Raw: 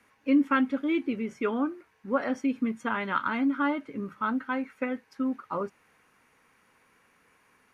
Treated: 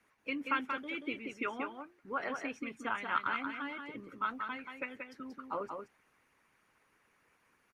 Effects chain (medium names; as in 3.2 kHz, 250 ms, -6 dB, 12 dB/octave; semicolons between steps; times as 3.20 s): harmonic-percussive split harmonic -15 dB; dynamic bell 2.6 kHz, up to +6 dB, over -54 dBFS, Q 1.9; on a send: delay 182 ms -5.5 dB; on the sum: trim -3.5 dB